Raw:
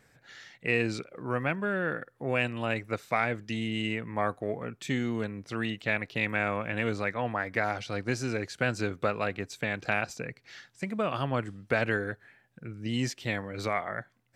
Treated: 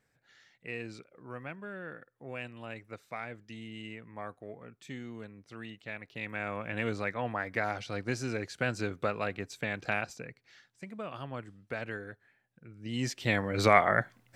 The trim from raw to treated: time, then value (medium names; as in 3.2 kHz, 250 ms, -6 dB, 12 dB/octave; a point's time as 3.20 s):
5.98 s -12.5 dB
6.80 s -3 dB
9.95 s -3 dB
10.55 s -10.5 dB
12.70 s -10.5 dB
13.22 s +2 dB
13.78 s +9 dB